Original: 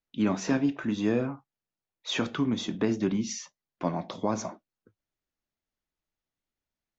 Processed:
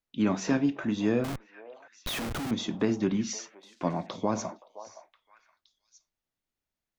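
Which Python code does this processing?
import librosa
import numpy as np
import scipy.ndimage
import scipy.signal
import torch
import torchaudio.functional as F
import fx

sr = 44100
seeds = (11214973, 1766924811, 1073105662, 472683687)

y = fx.schmitt(x, sr, flips_db=-39.0, at=(1.24, 2.51))
y = fx.echo_stepped(y, sr, ms=519, hz=740.0, octaves=1.4, feedback_pct=70, wet_db=-12)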